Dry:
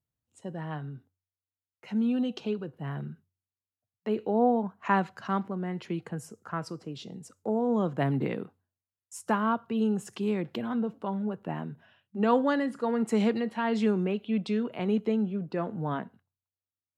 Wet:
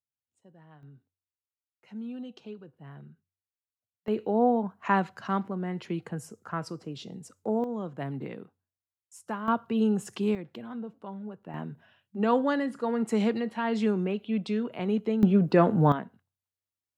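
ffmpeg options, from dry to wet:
-af "asetnsamples=n=441:p=0,asendcmd='0.83 volume volume -11dB;4.08 volume volume 0.5dB;7.64 volume volume -7.5dB;9.48 volume volume 2dB;10.35 volume volume -8dB;11.54 volume volume -0.5dB;15.23 volume volume 11dB;15.92 volume volume -0.5dB',volume=0.126"

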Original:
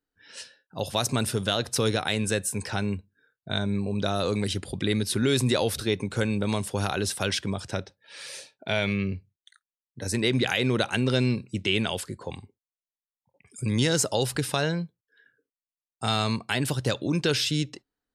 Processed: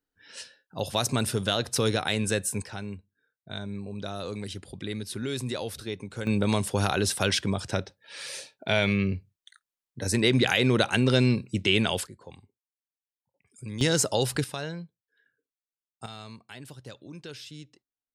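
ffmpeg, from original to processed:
-af "asetnsamples=n=441:p=0,asendcmd='2.62 volume volume -8.5dB;6.27 volume volume 2dB;12.07 volume volume -10.5dB;13.81 volume volume 0dB;14.44 volume volume -8.5dB;16.06 volume volume -17.5dB',volume=0.944"

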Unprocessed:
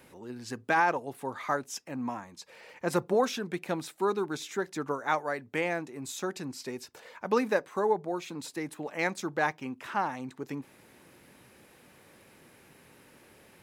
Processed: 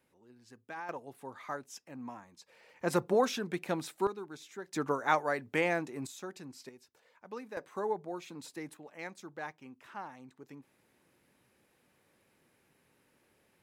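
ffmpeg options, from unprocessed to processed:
-af "asetnsamples=n=441:p=0,asendcmd='0.89 volume volume -9.5dB;2.79 volume volume -1.5dB;4.07 volume volume -12dB;4.73 volume volume 0.5dB;6.07 volume volume -9.5dB;6.69 volume volume -17dB;7.57 volume volume -7dB;8.77 volume volume -13.5dB',volume=0.126"

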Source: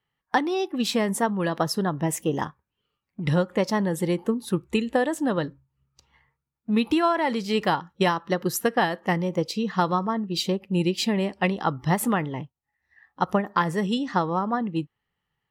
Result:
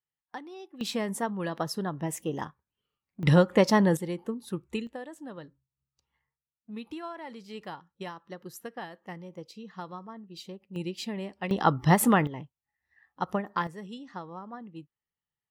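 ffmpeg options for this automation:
-af "asetnsamples=n=441:p=0,asendcmd='0.81 volume volume -7dB;3.23 volume volume 2.5dB;3.97 volume volume -9dB;4.87 volume volume -17.5dB;10.76 volume volume -11dB;11.51 volume volume 2dB;12.27 volume volume -7dB;13.67 volume volume -16.5dB',volume=0.119"

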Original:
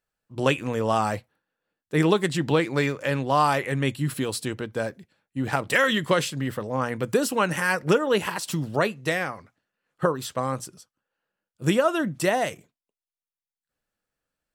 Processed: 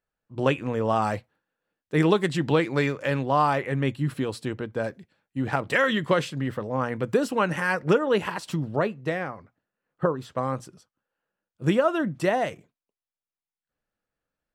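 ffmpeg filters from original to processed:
-af "asetnsamples=n=441:p=0,asendcmd='1.02 lowpass f 4300;3.26 lowpass f 1900;4.84 lowpass f 4400;5.44 lowpass f 2400;8.56 lowpass f 1100;10.36 lowpass f 2200',lowpass=f=2000:p=1"

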